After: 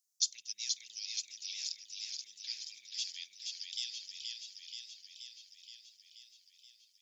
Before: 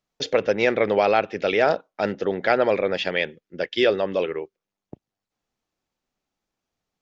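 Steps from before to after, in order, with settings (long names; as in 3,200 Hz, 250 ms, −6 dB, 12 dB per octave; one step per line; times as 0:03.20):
inverse Chebyshev high-pass filter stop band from 1,400 Hz, stop band 70 dB
feedback echo with a swinging delay time 477 ms, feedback 67%, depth 66 cents, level −4 dB
level +10 dB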